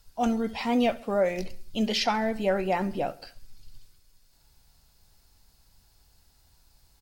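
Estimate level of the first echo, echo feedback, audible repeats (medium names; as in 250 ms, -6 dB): -20.5 dB, 54%, 3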